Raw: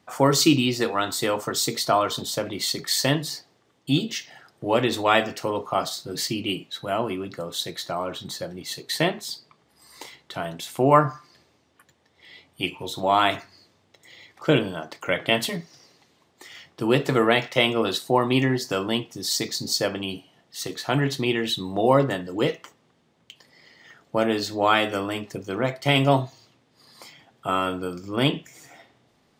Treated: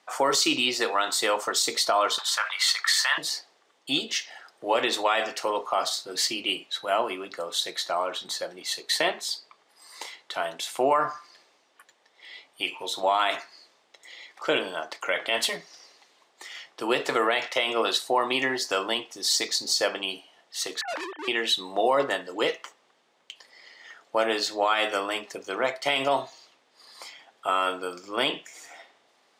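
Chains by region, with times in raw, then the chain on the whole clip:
2.18–3.18 s: high-pass 910 Hz 24 dB/octave + peaking EQ 1.4 kHz +13.5 dB 1.5 oct
20.81–21.28 s: formants replaced by sine waves + low-pass 2.2 kHz 24 dB/octave + overload inside the chain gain 31.5 dB
whole clip: high-pass 560 Hz 12 dB/octave; peak limiter -15.5 dBFS; low-pass 11 kHz 12 dB/octave; trim +3 dB

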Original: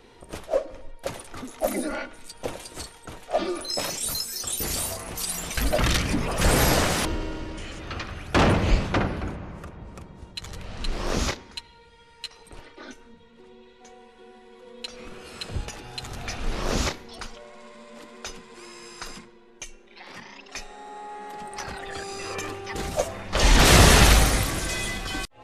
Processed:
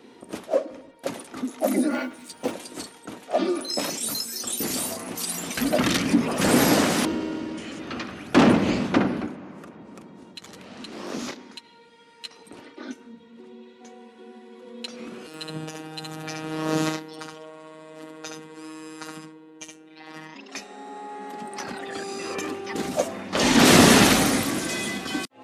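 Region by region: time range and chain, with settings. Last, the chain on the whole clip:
1.91–2.52 s: doubling 12 ms -4 dB + modulation noise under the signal 28 dB
9.26–12.25 s: bass shelf 130 Hz -9 dB + compression 1.5:1, threshold -43 dBFS
15.27–20.35 s: band-stop 2.2 kHz, Q 11 + robot voice 157 Hz + delay 70 ms -4 dB
whole clip: high-pass 180 Hz 12 dB/octave; peaking EQ 250 Hz +11 dB 0.91 oct

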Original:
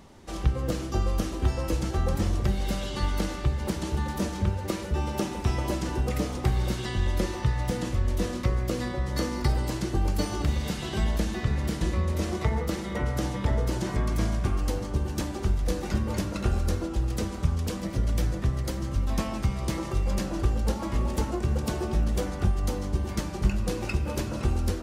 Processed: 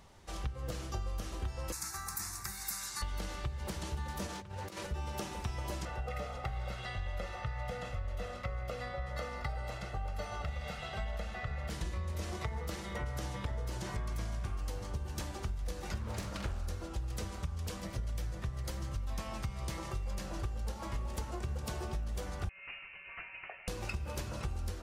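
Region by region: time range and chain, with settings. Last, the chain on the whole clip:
1.72–3.02 s: tilt EQ +4.5 dB/octave + static phaser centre 1.3 kHz, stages 4
4.27–4.87 s: high-pass 120 Hz + compressor with a negative ratio -36 dBFS + loudspeaker Doppler distortion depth 0.15 ms
5.85–11.70 s: tone controls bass -8 dB, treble -14 dB + comb 1.5 ms, depth 72%
16.00–16.67 s: doubling 45 ms -9 dB + loudspeaker Doppler distortion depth 0.67 ms
22.49–23.68 s: high-pass 670 Hz 24 dB/octave + frequency inversion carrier 3.3 kHz
whole clip: peaking EQ 270 Hz -10 dB 1.4 oct; compression, threshold -29 dBFS; trim -4.5 dB

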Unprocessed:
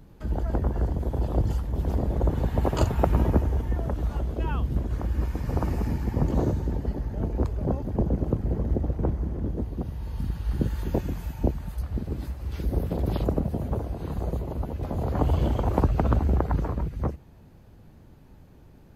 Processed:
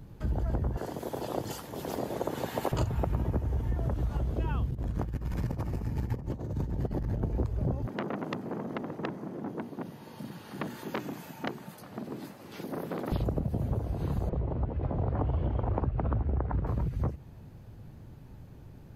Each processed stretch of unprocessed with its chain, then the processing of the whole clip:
0.77–2.72 s: high-pass 330 Hz + treble shelf 2.5 kHz +9.5 dB
4.70–7.23 s: compressor with a negative ratio -30 dBFS, ratio -0.5 + transformer saturation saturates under 230 Hz
7.86–13.12 s: high-pass 200 Hz 24 dB/octave + hum notches 60/120/180/240/300/360/420 Hz + transformer saturation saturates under 2 kHz
14.29–16.67 s: low-pass 2.2 kHz + bands offset in time highs, lows 30 ms, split 160 Hz
whole clip: peaking EQ 120 Hz +7 dB 0.73 oct; compression, threshold -26 dBFS

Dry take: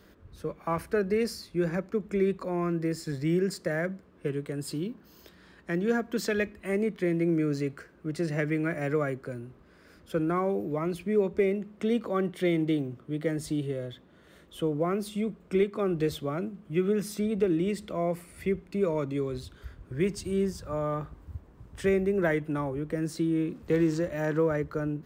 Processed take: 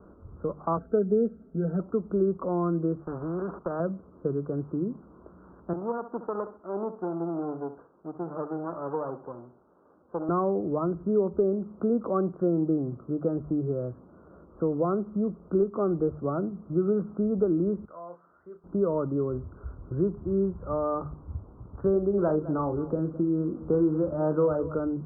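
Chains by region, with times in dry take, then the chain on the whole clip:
0.77–1.80 s: bass shelf 78 Hz -12 dB + static phaser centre 2.5 kHz, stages 4 + comb 4.5 ms, depth 83%
3.01–3.80 s: gate -44 dBFS, range -11 dB + bass shelf 240 Hz -9 dB + spectrum-flattening compressor 2:1
5.73–10.29 s: comb filter that takes the minimum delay 0.39 ms + high-pass 830 Hz 6 dB/octave + feedback delay 66 ms, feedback 31%, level -13 dB
17.85–18.64 s: upward compressor, threshold -35 dBFS + band-pass filter 2.2 kHz, Q 2.3 + doubling 34 ms -7.5 dB
21.92–24.75 s: doubling 39 ms -9 dB + delay 209 ms -17.5 dB
whole clip: steep low-pass 1.4 kHz 96 dB/octave; hum notches 50/100/150 Hz; compression 1.5:1, threshold -34 dBFS; trim +5.5 dB

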